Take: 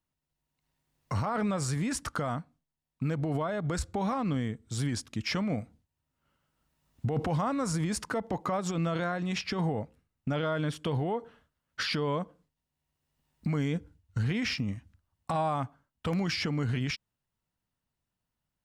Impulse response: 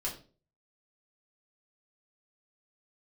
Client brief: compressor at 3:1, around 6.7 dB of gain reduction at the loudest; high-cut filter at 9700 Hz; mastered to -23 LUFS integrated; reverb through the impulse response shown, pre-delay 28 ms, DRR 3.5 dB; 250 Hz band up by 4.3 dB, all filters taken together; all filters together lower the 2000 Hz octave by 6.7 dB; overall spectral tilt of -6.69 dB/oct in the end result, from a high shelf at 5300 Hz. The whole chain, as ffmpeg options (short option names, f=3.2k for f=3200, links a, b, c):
-filter_complex "[0:a]lowpass=9.7k,equalizer=f=250:t=o:g=6,equalizer=f=2k:t=o:g=-8,highshelf=f=5.3k:g=-7,acompressor=threshold=-32dB:ratio=3,asplit=2[a][b];[1:a]atrim=start_sample=2205,adelay=28[c];[b][c]afir=irnorm=-1:irlink=0,volume=-6dB[d];[a][d]amix=inputs=2:normalize=0,volume=11dB"